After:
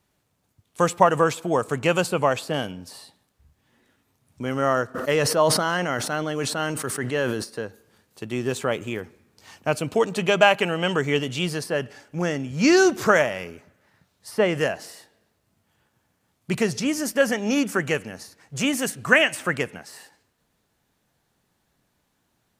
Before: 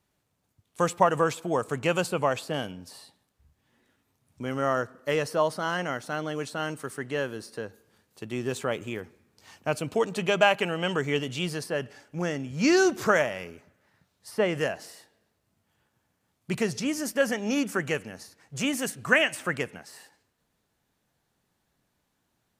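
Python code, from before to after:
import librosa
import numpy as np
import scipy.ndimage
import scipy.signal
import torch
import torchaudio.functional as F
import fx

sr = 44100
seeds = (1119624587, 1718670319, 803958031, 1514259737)

y = fx.sustainer(x, sr, db_per_s=36.0, at=(4.94, 7.43), fade=0.02)
y = y * librosa.db_to_amplitude(4.5)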